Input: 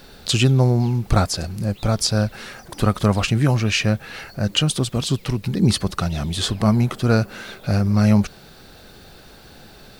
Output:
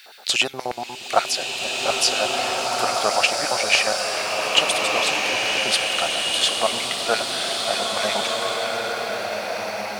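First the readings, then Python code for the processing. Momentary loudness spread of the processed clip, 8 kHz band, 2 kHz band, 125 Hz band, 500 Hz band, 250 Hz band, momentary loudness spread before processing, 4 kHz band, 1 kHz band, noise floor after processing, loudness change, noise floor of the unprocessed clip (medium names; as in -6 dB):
8 LU, +4.5 dB, +7.5 dB, -27.5 dB, +2.0 dB, -16.0 dB, 9 LU, +6.5 dB, +6.0 dB, -37 dBFS, -0.5 dB, -45 dBFS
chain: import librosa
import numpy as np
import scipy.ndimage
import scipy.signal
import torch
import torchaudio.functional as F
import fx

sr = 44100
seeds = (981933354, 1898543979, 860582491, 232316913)

y = fx.filter_lfo_highpass(x, sr, shape='square', hz=8.4, low_hz=690.0, high_hz=2200.0, q=2.3)
y = fx.rev_bloom(y, sr, seeds[0], attack_ms=1860, drr_db=-2.0)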